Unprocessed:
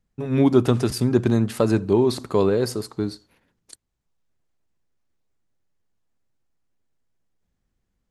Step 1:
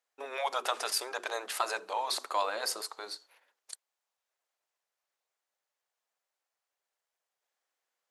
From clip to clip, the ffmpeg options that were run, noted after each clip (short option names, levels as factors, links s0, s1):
-af "afftfilt=real='re*lt(hypot(re,im),0.447)':imag='im*lt(hypot(re,im),0.447)':win_size=1024:overlap=0.75,highpass=f=580:w=0.5412,highpass=f=580:w=1.3066"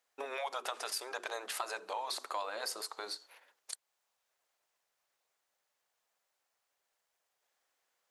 -af "acompressor=threshold=0.00631:ratio=3,volume=1.78"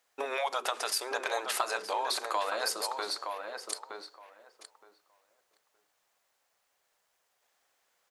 -filter_complex "[0:a]asplit=2[s0][s1];[s1]adelay=918,lowpass=f=2100:p=1,volume=0.531,asplit=2[s2][s3];[s3]adelay=918,lowpass=f=2100:p=1,volume=0.16,asplit=2[s4][s5];[s5]adelay=918,lowpass=f=2100:p=1,volume=0.16[s6];[s0][s2][s4][s6]amix=inputs=4:normalize=0,volume=2.11"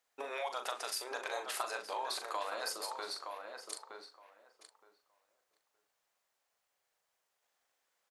-filter_complex "[0:a]asplit=2[s0][s1];[s1]adelay=40,volume=0.422[s2];[s0][s2]amix=inputs=2:normalize=0,volume=0.422"